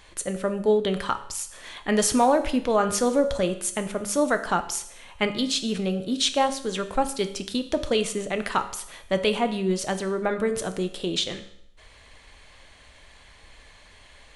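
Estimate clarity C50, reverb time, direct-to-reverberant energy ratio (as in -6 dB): 12.0 dB, 0.70 s, 8.0 dB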